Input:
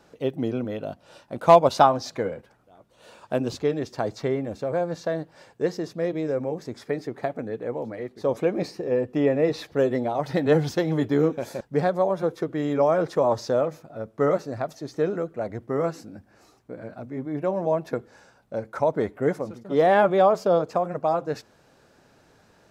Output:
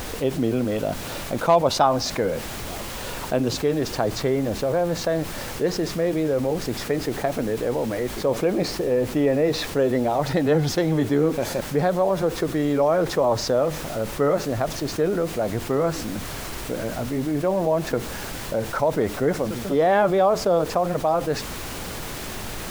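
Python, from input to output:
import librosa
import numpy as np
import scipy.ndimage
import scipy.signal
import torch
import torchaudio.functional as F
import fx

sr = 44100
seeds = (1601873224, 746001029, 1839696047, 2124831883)

y = fx.dmg_noise_colour(x, sr, seeds[0], colour='pink', level_db=-47.0)
y = fx.env_flatten(y, sr, amount_pct=50)
y = F.gain(torch.from_numpy(y), -4.0).numpy()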